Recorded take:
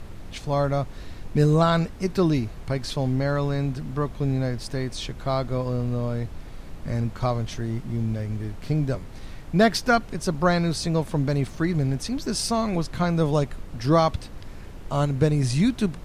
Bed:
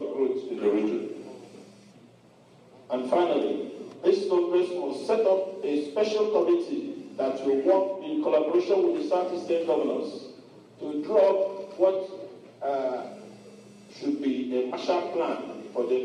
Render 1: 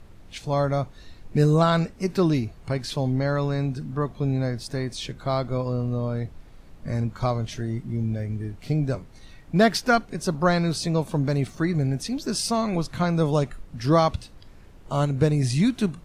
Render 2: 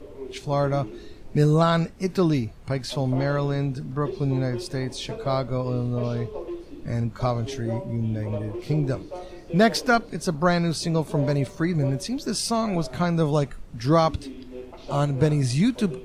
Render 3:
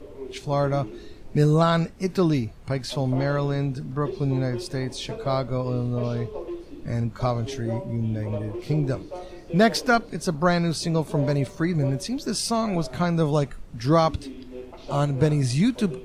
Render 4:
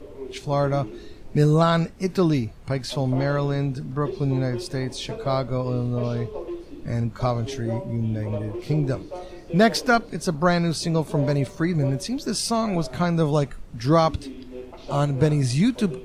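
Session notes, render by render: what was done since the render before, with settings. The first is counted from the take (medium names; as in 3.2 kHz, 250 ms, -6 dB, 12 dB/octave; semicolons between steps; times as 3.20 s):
noise print and reduce 9 dB
add bed -11.5 dB
no audible change
trim +1 dB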